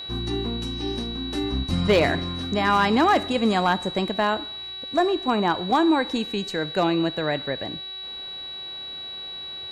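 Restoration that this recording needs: clip repair -12 dBFS; de-hum 379.9 Hz, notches 12; notch 3900 Hz, Q 30

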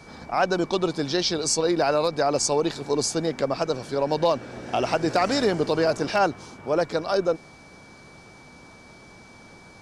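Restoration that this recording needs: clip repair -11.5 dBFS; notch 2300 Hz, Q 30

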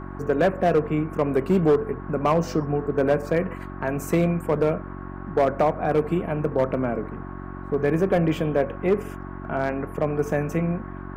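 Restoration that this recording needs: clip repair -13 dBFS; de-hum 46.5 Hz, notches 8; notch 1100 Hz, Q 30; noise print and reduce 30 dB

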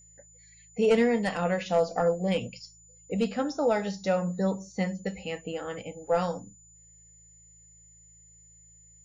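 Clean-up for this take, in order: de-hum 54.6 Hz, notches 3; notch 7000 Hz, Q 30

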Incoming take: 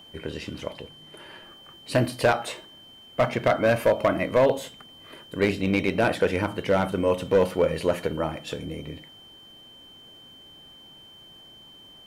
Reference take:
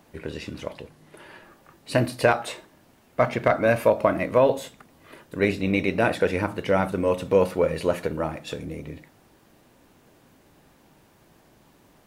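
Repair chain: clip repair -13 dBFS; notch 3100 Hz, Q 30

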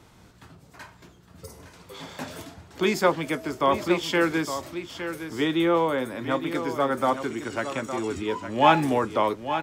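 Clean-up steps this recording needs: inverse comb 0.862 s -10 dB

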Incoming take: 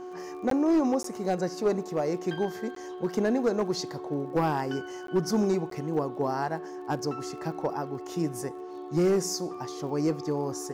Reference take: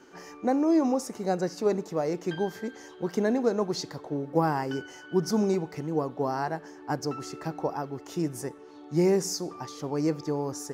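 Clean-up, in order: clip repair -18.5 dBFS; de-click; de-hum 364.5 Hz, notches 3; interpolate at 0.5/1.03/2.75/5.07/5.7, 13 ms

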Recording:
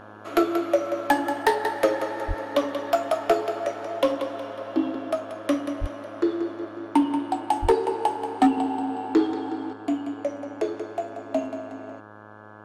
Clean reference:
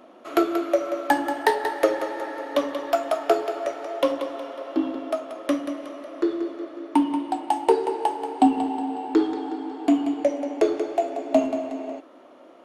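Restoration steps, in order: clip repair -11 dBFS; de-hum 105.8 Hz, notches 16; 2.27–2.39 HPF 140 Hz 24 dB/oct; 5.8–5.92 HPF 140 Hz 24 dB/oct; 7.61–7.73 HPF 140 Hz 24 dB/oct; gain 0 dB, from 9.73 s +6.5 dB

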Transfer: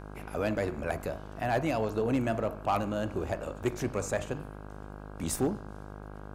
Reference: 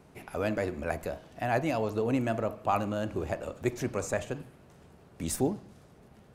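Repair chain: clip repair -20 dBFS; de-hum 51 Hz, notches 32

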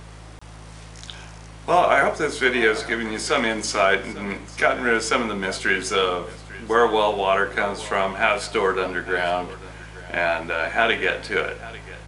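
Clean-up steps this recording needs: de-hum 53.8 Hz, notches 3; interpolate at 0.39, 25 ms; inverse comb 0.846 s -18.5 dB

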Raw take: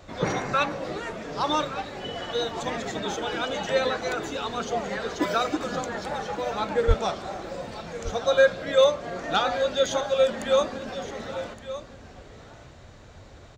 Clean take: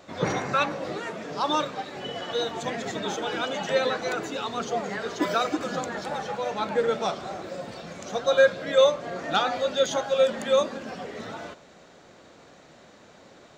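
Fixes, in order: clip repair -9 dBFS; 6.87–6.99 HPF 140 Hz 24 dB/oct; noise print and reduce 6 dB; inverse comb 1.168 s -13.5 dB

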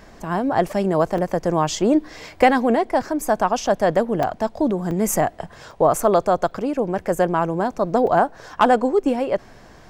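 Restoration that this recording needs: interpolate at 1.18/3.67/4.23/4.91/5.71/6.51/8.07, 3.5 ms

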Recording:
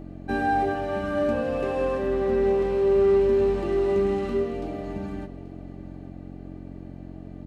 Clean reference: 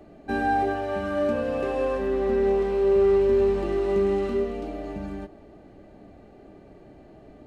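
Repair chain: de-hum 45.1 Hz, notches 7; inverse comb 0.833 s -17 dB

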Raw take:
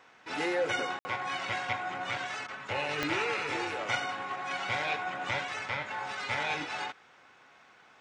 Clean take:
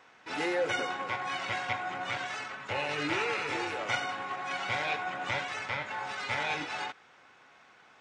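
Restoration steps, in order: de-click; room tone fill 0.99–1.05; interpolate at 2.47, 11 ms

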